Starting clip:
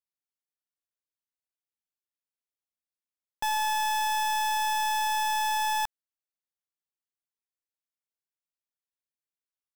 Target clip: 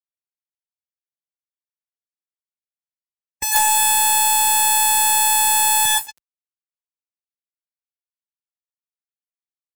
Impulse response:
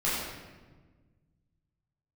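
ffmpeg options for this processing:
-filter_complex "[0:a]asplit=2[link_01][link_02];[1:a]atrim=start_sample=2205,adelay=94[link_03];[link_02][link_03]afir=irnorm=-1:irlink=0,volume=-11dB[link_04];[link_01][link_04]amix=inputs=2:normalize=0,acrossover=split=170|3000[link_05][link_06][link_07];[link_06]acompressor=threshold=-35dB:ratio=2[link_08];[link_05][link_08][link_07]amix=inputs=3:normalize=0,aeval=exprs='0.15*(cos(1*acos(clip(val(0)/0.15,-1,1)))-cos(1*PI/2))+0.075*(cos(4*acos(clip(val(0)/0.15,-1,1)))-cos(4*PI/2))+0.0668*(cos(7*acos(clip(val(0)/0.15,-1,1)))-cos(7*PI/2))':channel_layout=same,highshelf=frequency=6800:width_type=q:width=1.5:gain=9,aecho=1:1:228:0.0841,acompressor=threshold=-15dB:ratio=4,aeval=exprs='val(0)*gte(abs(val(0)),0.0473)':channel_layout=same,highpass=43,afftdn=noise_reduction=16:noise_floor=-34,aeval=exprs='0.355*(cos(1*acos(clip(val(0)/0.355,-1,1)))-cos(1*PI/2))+0.112*(cos(3*acos(clip(val(0)/0.355,-1,1)))-cos(3*PI/2))+0.01*(cos(4*acos(clip(val(0)/0.355,-1,1)))-cos(4*PI/2))+0.126*(cos(5*acos(clip(val(0)/0.355,-1,1)))-cos(5*PI/2))':channel_layout=same,volume=3.5dB"

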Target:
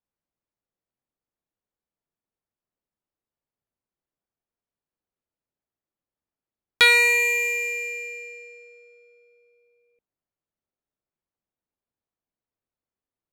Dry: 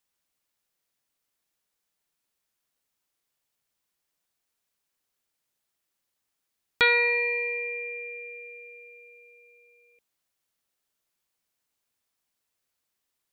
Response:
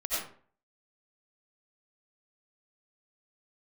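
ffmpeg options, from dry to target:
-af "crystalizer=i=4.5:c=0,adynamicsmooth=sensitivity=5.5:basefreq=780"

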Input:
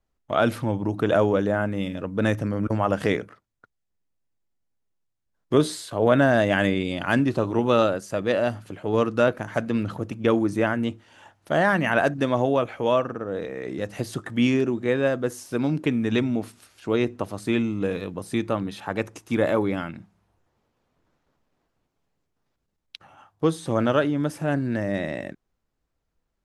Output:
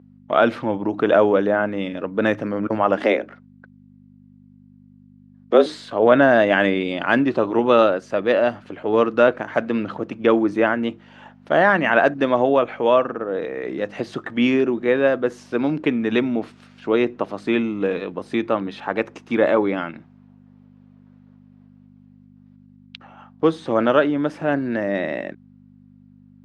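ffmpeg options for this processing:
ffmpeg -i in.wav -filter_complex "[0:a]asettb=1/sr,asplit=3[link_01][link_02][link_03];[link_01]atrim=end=2.974[link_04];[link_02]atrim=start=2.97:end=5.66,asetpts=PTS-STARTPTS,afade=type=in:duration=0.004:curve=qsin,afade=type=out:start_time=2.686:duration=0.004:curve=qsin,afreqshift=110[link_05];[link_03]atrim=start=5.656[link_06];[link_04][link_05]acrossfade=duration=0.004:curve1=hsin:curve2=qsin[link_07];[link_07][link_06]acrossfade=duration=0.004:curve1=qsin:curve2=hsin,aeval=exprs='val(0)+0.01*(sin(2*PI*50*n/s)+sin(2*PI*2*50*n/s)/2+sin(2*PI*3*50*n/s)/3+sin(2*PI*4*50*n/s)/4+sin(2*PI*5*50*n/s)/5)':channel_layout=same,highpass=250,lowpass=3300,volume=5.5dB" out.wav

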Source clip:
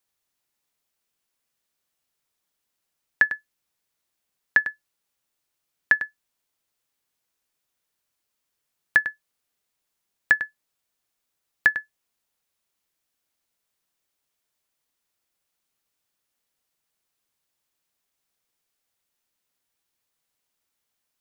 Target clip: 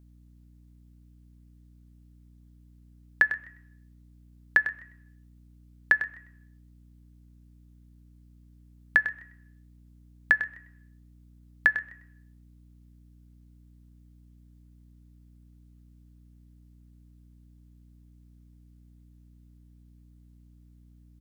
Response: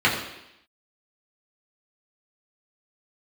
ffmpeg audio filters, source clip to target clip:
-filter_complex "[0:a]asplit=2[link_01][link_02];[1:a]atrim=start_sample=2205,lowpass=3100[link_03];[link_02][link_03]afir=irnorm=-1:irlink=0,volume=-33dB[link_04];[link_01][link_04]amix=inputs=2:normalize=0,aeval=exprs='val(0)+0.00282*(sin(2*PI*60*n/s)+sin(2*PI*2*60*n/s)/2+sin(2*PI*3*60*n/s)/3+sin(2*PI*4*60*n/s)/4+sin(2*PI*5*60*n/s)/5)':channel_layout=same,asplit=3[link_05][link_06][link_07];[link_06]adelay=127,afreqshift=89,volume=-22dB[link_08];[link_07]adelay=254,afreqshift=178,volume=-31.1dB[link_09];[link_05][link_08][link_09]amix=inputs=3:normalize=0,volume=-2.5dB"

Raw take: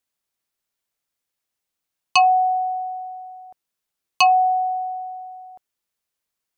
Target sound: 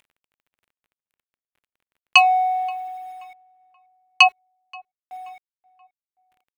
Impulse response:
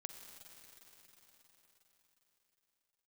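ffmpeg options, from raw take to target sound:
-filter_complex "[0:a]agate=range=-19dB:threshold=-37dB:ratio=16:detection=peak,asplit=3[link_01][link_02][link_03];[link_01]afade=type=out:start_time=4.27:duration=0.02[link_04];[link_02]asplit=3[link_05][link_06][link_07];[link_05]bandpass=frequency=270:width_type=q:width=8,volume=0dB[link_08];[link_06]bandpass=frequency=2290:width_type=q:width=8,volume=-6dB[link_09];[link_07]bandpass=frequency=3010:width_type=q:width=8,volume=-9dB[link_10];[link_08][link_09][link_10]amix=inputs=3:normalize=0,afade=type=in:start_time=4.27:duration=0.02,afade=type=out:start_time=5.11:duration=0.02[link_11];[link_03]afade=type=in:start_time=5.11:duration=0.02[link_12];[link_04][link_11][link_12]amix=inputs=3:normalize=0,acompressor=mode=upward:threshold=-38dB:ratio=2.5,aresample=22050,aresample=44100,asplit=3[link_13][link_14][link_15];[link_13]afade=type=out:start_time=2.16:duration=0.02[link_16];[link_14]adynamicsmooth=sensitivity=4.5:basefreq=3900,afade=type=in:start_time=2.16:duration=0.02,afade=type=out:start_time=3.06:duration=0.02[link_17];[link_15]afade=type=in:start_time=3.06:duration=0.02[link_18];[link_16][link_17][link_18]amix=inputs=3:normalize=0,crystalizer=i=8:c=0,acrusher=bits=6:mix=0:aa=0.000001,highshelf=frequency=3700:width_type=q:width=1.5:gain=-12,asplit=2[link_19][link_20];[link_20]adelay=529,lowpass=frequency=1500:poles=1,volume=-22.5dB,asplit=2[link_21][link_22];[link_22]adelay=529,lowpass=frequency=1500:poles=1,volume=0.49,asplit=2[link_23][link_24];[link_24]adelay=529,lowpass=frequency=1500:poles=1,volume=0.49[link_25];[link_21][link_23][link_25]amix=inputs=3:normalize=0[link_26];[link_19][link_26]amix=inputs=2:normalize=0,volume=-4.5dB"

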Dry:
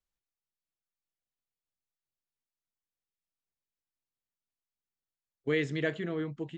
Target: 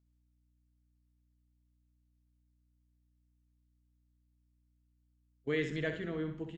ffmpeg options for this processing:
ffmpeg -i in.wav -filter_complex "[0:a]asplit=2[link_01][link_02];[link_02]asplit=5[link_03][link_04][link_05][link_06][link_07];[link_03]adelay=95,afreqshift=-130,volume=-20dB[link_08];[link_04]adelay=190,afreqshift=-260,volume=-24dB[link_09];[link_05]adelay=285,afreqshift=-390,volume=-28dB[link_10];[link_06]adelay=380,afreqshift=-520,volume=-32dB[link_11];[link_07]adelay=475,afreqshift=-650,volume=-36.1dB[link_12];[link_08][link_09][link_10][link_11][link_12]amix=inputs=5:normalize=0[link_13];[link_01][link_13]amix=inputs=2:normalize=0,aeval=exprs='val(0)+0.000398*(sin(2*PI*60*n/s)+sin(2*PI*2*60*n/s)/2+sin(2*PI*3*60*n/s)/3+sin(2*PI*4*60*n/s)/4+sin(2*PI*5*60*n/s)/5)':channel_layout=same,asplit=2[link_14][link_15];[link_15]aecho=0:1:64|128|192|256:0.398|0.123|0.0383|0.0119[link_16];[link_14][link_16]amix=inputs=2:normalize=0,volume=-4.5dB" out.wav

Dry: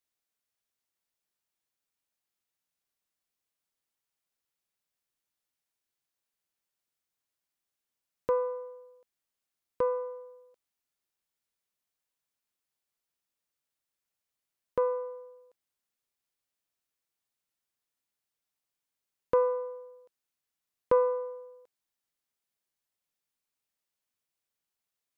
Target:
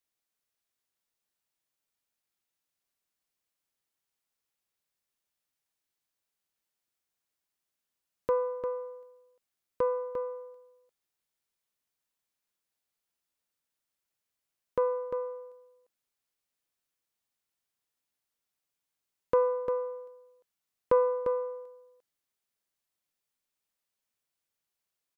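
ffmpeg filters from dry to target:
ffmpeg -i in.wav -af "aecho=1:1:349:0.422" out.wav

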